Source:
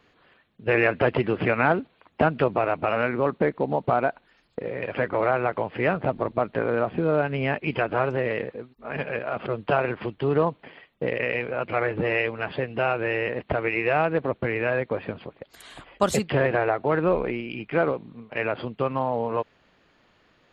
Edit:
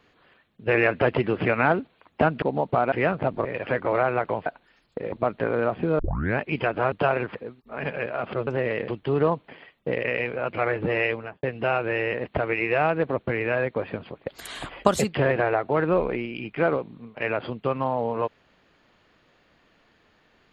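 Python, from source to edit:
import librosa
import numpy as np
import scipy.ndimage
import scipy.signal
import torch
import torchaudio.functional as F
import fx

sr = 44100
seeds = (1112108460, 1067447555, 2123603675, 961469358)

y = fx.studio_fade_out(x, sr, start_s=12.28, length_s=0.3)
y = fx.edit(y, sr, fx.cut(start_s=2.42, length_s=1.15),
    fx.swap(start_s=4.07, length_s=0.66, other_s=5.74, other_length_s=0.53),
    fx.tape_start(start_s=7.14, length_s=0.4),
    fx.swap(start_s=8.07, length_s=0.41, other_s=9.6, other_length_s=0.43),
    fx.clip_gain(start_s=15.41, length_s=0.61, db=8.5), tone=tone)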